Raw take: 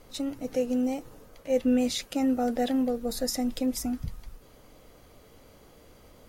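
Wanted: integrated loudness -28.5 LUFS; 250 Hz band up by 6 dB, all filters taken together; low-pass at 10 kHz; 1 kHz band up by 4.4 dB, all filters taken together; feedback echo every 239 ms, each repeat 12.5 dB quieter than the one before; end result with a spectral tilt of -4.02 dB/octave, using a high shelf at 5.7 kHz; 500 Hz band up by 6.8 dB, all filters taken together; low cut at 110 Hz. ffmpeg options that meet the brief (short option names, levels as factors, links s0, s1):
-af "highpass=110,lowpass=10000,equalizer=f=250:t=o:g=5,equalizer=f=500:t=o:g=5.5,equalizer=f=1000:t=o:g=3,highshelf=f=5700:g=-5.5,aecho=1:1:239|478|717:0.237|0.0569|0.0137,volume=0.501"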